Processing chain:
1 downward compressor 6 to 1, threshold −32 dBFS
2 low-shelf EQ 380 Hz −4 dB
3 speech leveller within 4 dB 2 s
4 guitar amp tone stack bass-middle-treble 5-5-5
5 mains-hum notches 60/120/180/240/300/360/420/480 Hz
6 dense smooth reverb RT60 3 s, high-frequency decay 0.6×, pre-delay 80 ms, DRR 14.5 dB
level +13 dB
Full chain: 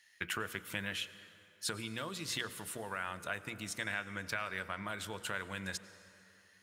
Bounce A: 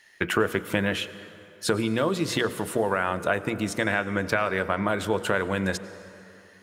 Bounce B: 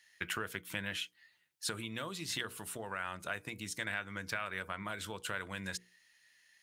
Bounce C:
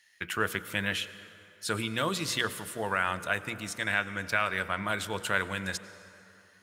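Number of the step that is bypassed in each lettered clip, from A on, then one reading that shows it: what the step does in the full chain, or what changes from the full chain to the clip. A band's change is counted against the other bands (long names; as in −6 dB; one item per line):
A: 4, 8 kHz band −8.5 dB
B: 6, change in momentary loudness spread −2 LU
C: 1, average gain reduction 7.0 dB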